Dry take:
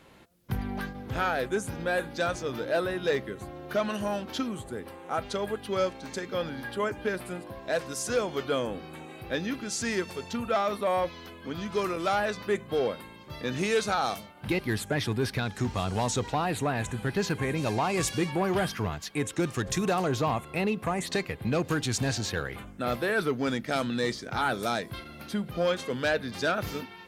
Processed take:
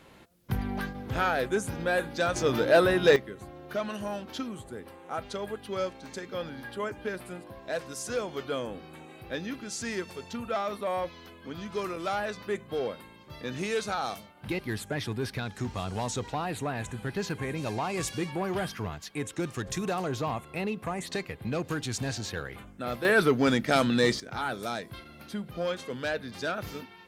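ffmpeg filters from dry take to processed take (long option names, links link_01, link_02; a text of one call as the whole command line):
ffmpeg -i in.wav -af "asetnsamples=nb_out_samples=441:pad=0,asendcmd='2.36 volume volume 7dB;3.16 volume volume -4dB;23.05 volume volume 5dB;24.2 volume volume -4.5dB',volume=1dB" out.wav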